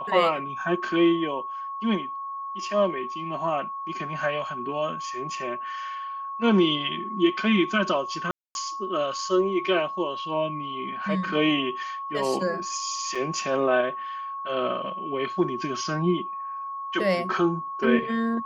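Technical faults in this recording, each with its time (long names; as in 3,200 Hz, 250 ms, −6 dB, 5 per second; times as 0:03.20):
whistle 1,100 Hz −31 dBFS
0:08.31–0:08.55: drop-out 241 ms
0:13.15: drop-out 4.7 ms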